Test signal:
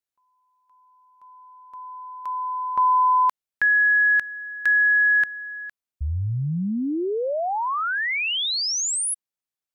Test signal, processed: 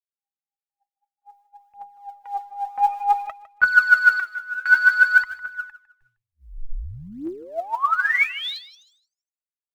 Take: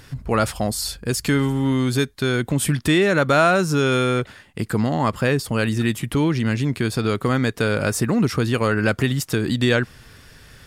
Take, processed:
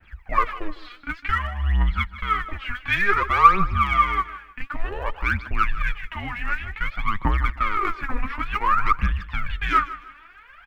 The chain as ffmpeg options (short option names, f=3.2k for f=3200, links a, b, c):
-filter_complex "[0:a]crystalizer=i=7.5:c=0,highpass=f=190:t=q:w=0.5412,highpass=f=190:t=q:w=1.307,lowpass=f=2.5k:t=q:w=0.5176,lowpass=f=2.5k:t=q:w=0.7071,lowpass=f=2.5k:t=q:w=1.932,afreqshift=-200,asplit=2[a][b];[b]acontrast=41,volume=-2dB[c];[a][c]amix=inputs=2:normalize=0,aphaser=in_gain=1:out_gain=1:delay=4.2:decay=0.79:speed=0.55:type=triangular,adynamicequalizer=threshold=0.0794:dfrequency=1200:dqfactor=6.6:tfrequency=1200:tqfactor=6.6:attack=5:release=100:ratio=0.375:range=4:mode=boostabove:tftype=bell,acrusher=bits=10:mix=0:aa=0.000001,equalizer=f=260:w=0.38:g=-9.5,agate=range=-33dB:threshold=-33dB:ratio=3:release=325:detection=rms,asplit=2[d][e];[e]aecho=0:1:155|310|465:0.158|0.0475|0.0143[f];[d][f]amix=inputs=2:normalize=0,volume=-14.5dB"